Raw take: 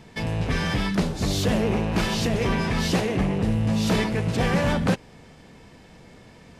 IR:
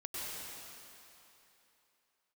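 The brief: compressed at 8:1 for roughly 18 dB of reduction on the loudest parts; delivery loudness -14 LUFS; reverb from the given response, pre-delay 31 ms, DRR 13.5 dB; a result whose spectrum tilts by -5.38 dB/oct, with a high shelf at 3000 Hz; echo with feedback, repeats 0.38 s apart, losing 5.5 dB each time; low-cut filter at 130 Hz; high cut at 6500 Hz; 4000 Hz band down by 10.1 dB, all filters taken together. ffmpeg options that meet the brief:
-filter_complex "[0:a]highpass=130,lowpass=6.5k,highshelf=f=3k:g=-7.5,equalizer=f=4k:t=o:g=-7,acompressor=threshold=-38dB:ratio=8,aecho=1:1:380|760|1140|1520|1900|2280|2660:0.531|0.281|0.149|0.079|0.0419|0.0222|0.0118,asplit=2[a][b];[1:a]atrim=start_sample=2205,adelay=31[c];[b][c]afir=irnorm=-1:irlink=0,volume=-15.5dB[d];[a][d]amix=inputs=2:normalize=0,volume=26.5dB"

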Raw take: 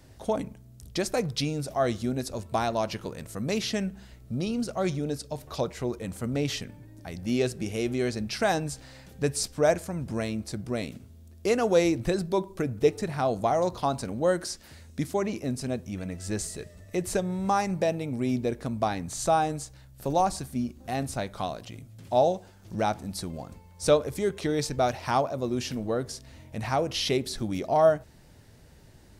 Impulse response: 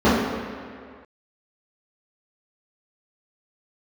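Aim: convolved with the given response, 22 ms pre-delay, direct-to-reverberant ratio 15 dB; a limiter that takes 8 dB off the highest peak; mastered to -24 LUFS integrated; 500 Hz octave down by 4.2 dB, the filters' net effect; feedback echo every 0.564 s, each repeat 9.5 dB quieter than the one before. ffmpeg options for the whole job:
-filter_complex "[0:a]equalizer=f=500:t=o:g=-5.5,alimiter=limit=-21dB:level=0:latency=1,aecho=1:1:564|1128|1692|2256:0.335|0.111|0.0365|0.012,asplit=2[a][b];[1:a]atrim=start_sample=2205,adelay=22[c];[b][c]afir=irnorm=-1:irlink=0,volume=-40dB[d];[a][d]amix=inputs=2:normalize=0,volume=8dB"

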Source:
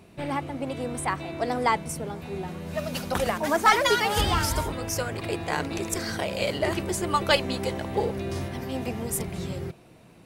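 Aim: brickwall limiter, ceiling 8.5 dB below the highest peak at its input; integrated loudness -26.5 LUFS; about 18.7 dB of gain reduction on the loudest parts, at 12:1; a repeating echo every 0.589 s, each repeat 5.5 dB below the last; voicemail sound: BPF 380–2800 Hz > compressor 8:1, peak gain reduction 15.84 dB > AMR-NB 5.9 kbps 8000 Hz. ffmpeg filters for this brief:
-af "acompressor=threshold=-33dB:ratio=12,alimiter=level_in=5.5dB:limit=-24dB:level=0:latency=1,volume=-5.5dB,highpass=380,lowpass=2.8k,aecho=1:1:589|1178|1767|2356|2945|3534|4123:0.531|0.281|0.149|0.079|0.0419|0.0222|0.0118,acompressor=threshold=-51dB:ratio=8,volume=30dB" -ar 8000 -c:a libopencore_amrnb -b:a 5900

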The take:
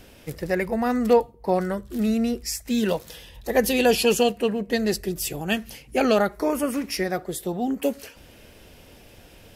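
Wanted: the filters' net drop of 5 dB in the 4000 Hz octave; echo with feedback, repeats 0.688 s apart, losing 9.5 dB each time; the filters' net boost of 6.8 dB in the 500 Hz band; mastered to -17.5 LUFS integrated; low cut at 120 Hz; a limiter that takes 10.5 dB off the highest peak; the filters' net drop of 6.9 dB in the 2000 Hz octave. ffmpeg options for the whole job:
-af "highpass=120,equalizer=f=500:t=o:g=8,equalizer=f=2k:t=o:g=-8.5,equalizer=f=4k:t=o:g=-4,alimiter=limit=-12dB:level=0:latency=1,aecho=1:1:688|1376|2064|2752:0.335|0.111|0.0365|0.012,volume=5.5dB"

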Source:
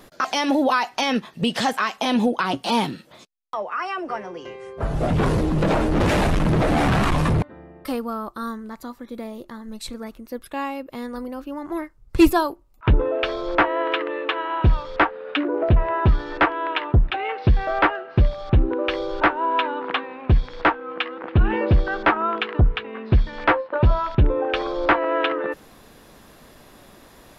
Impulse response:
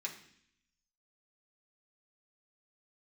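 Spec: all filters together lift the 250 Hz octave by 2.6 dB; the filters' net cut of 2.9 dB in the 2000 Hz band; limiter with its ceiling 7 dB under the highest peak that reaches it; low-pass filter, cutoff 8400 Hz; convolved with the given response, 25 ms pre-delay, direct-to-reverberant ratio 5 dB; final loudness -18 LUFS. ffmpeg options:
-filter_complex "[0:a]lowpass=8.4k,equalizer=f=250:t=o:g=3.5,equalizer=f=2k:t=o:g=-4,alimiter=limit=-11dB:level=0:latency=1,asplit=2[a][b];[1:a]atrim=start_sample=2205,adelay=25[c];[b][c]afir=irnorm=-1:irlink=0,volume=-5dB[d];[a][d]amix=inputs=2:normalize=0,volume=4.5dB"

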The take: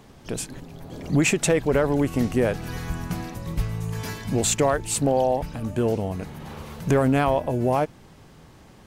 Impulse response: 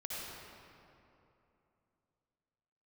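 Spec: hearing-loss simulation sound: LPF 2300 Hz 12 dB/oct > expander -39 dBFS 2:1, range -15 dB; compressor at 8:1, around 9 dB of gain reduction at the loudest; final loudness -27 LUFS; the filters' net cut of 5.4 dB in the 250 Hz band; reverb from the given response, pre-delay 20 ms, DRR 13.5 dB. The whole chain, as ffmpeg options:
-filter_complex "[0:a]equalizer=f=250:t=o:g=-7,acompressor=threshold=-27dB:ratio=8,asplit=2[a][b];[1:a]atrim=start_sample=2205,adelay=20[c];[b][c]afir=irnorm=-1:irlink=0,volume=-15dB[d];[a][d]amix=inputs=2:normalize=0,lowpass=2.3k,agate=range=-15dB:threshold=-39dB:ratio=2,volume=6.5dB"

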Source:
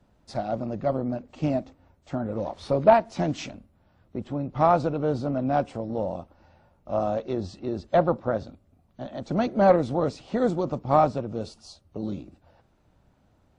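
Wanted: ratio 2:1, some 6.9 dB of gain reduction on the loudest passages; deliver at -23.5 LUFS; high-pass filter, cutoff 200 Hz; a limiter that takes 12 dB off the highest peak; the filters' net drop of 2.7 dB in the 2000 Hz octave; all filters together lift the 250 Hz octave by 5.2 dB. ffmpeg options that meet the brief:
-af "highpass=200,equalizer=f=250:t=o:g=8.5,equalizer=f=2k:t=o:g=-4,acompressor=threshold=-23dB:ratio=2,volume=9dB,alimiter=limit=-13.5dB:level=0:latency=1"

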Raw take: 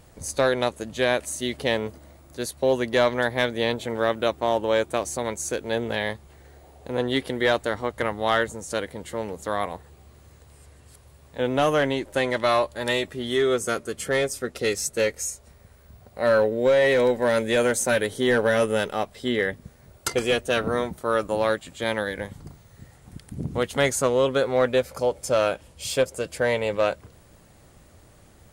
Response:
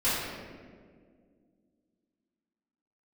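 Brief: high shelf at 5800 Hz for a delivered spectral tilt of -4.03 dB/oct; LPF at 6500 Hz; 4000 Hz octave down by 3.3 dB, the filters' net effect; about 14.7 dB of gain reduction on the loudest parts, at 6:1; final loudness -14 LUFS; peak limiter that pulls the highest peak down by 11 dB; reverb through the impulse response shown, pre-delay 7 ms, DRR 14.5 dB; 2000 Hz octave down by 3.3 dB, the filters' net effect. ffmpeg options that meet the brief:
-filter_complex "[0:a]lowpass=6.5k,equalizer=f=2k:t=o:g=-4,equalizer=f=4k:t=o:g=-4.5,highshelf=f=5.8k:g=7,acompressor=threshold=-33dB:ratio=6,alimiter=level_in=5.5dB:limit=-24dB:level=0:latency=1,volume=-5.5dB,asplit=2[a][b];[1:a]atrim=start_sample=2205,adelay=7[c];[b][c]afir=irnorm=-1:irlink=0,volume=-27dB[d];[a][d]amix=inputs=2:normalize=0,volume=26dB"

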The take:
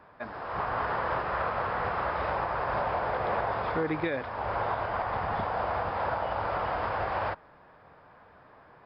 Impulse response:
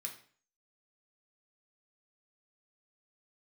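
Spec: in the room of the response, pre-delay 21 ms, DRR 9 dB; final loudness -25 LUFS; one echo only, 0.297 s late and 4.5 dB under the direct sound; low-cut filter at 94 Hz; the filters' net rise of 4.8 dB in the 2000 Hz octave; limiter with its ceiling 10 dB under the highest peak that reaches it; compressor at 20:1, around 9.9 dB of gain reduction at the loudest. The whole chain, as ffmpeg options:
-filter_complex "[0:a]highpass=94,equalizer=f=2k:t=o:g=6.5,acompressor=threshold=-34dB:ratio=20,alimiter=level_in=11dB:limit=-24dB:level=0:latency=1,volume=-11dB,aecho=1:1:297:0.596,asplit=2[a][b];[1:a]atrim=start_sample=2205,adelay=21[c];[b][c]afir=irnorm=-1:irlink=0,volume=-6.5dB[d];[a][d]amix=inputs=2:normalize=0,volume=17dB"

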